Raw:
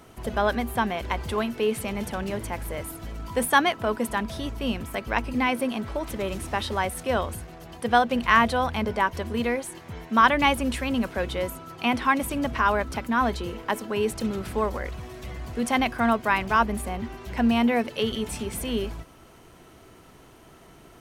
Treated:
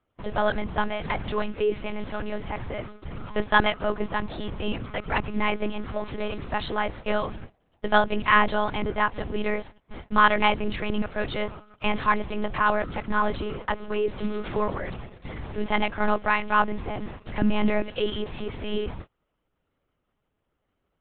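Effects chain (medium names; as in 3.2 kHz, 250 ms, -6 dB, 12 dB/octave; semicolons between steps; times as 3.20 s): monotone LPC vocoder at 8 kHz 210 Hz; gate -38 dBFS, range -26 dB; 13.30–14.58 s: three bands compressed up and down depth 40%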